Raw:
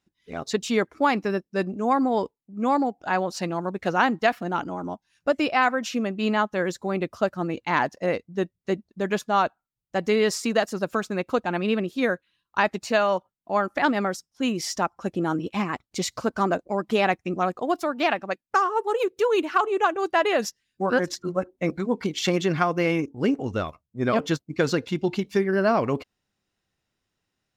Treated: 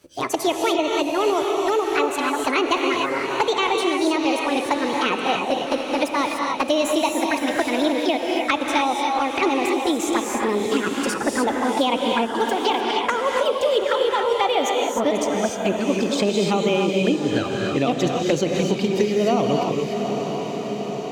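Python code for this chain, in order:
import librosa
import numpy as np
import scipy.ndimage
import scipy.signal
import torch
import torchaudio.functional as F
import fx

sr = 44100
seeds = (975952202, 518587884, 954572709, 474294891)

y = fx.speed_glide(x, sr, from_pct=160, to_pct=101)
y = fx.env_flanger(y, sr, rest_ms=11.9, full_db=-20.5)
y = fx.echo_diffused(y, sr, ms=723, feedback_pct=46, wet_db=-12.0)
y = fx.rev_gated(y, sr, seeds[0], gate_ms=320, shape='rising', drr_db=1.5)
y = fx.band_squash(y, sr, depth_pct=70)
y = y * librosa.db_to_amplitude(3.5)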